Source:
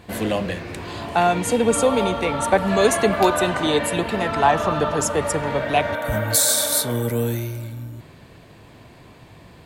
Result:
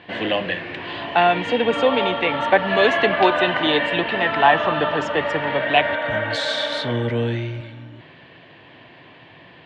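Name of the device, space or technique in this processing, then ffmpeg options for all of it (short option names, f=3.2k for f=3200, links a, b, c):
kitchen radio: -filter_complex "[0:a]highpass=180,equalizer=f=210:t=q:w=4:g=-7,equalizer=f=430:t=q:w=4:g=-4,equalizer=f=1.3k:t=q:w=4:g=-3,equalizer=f=1.8k:t=q:w=4:g=7,equalizer=f=3k:t=q:w=4:g=8,lowpass=f=3.7k:w=0.5412,lowpass=f=3.7k:w=1.3066,asettb=1/sr,asplit=3[a][b][c];[a]atrim=end=6.834[d];[b]atrim=start=6.83:end=7.61,asetpts=PTS-STARTPTS,afade=t=in:d=0.004:c=qsin,afade=t=out:st=0.776:d=0.004:c=qsin,lowshelf=f=150:g=11[e];[c]atrim=start=7.606[f];[d][e]acrossfade=d=0.004:c1=hsin:c2=qsin[g];[g][f]acrossfade=d=0.004:c1=qsin:c2=hsin,volume=2dB"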